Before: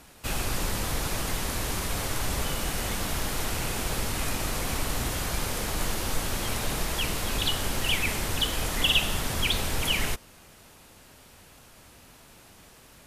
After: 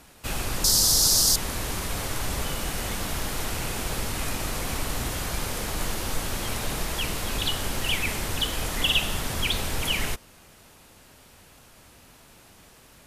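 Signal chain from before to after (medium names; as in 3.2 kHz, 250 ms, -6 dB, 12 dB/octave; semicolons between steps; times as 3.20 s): 0.64–1.36 s: resonant high shelf 3.5 kHz +13 dB, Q 3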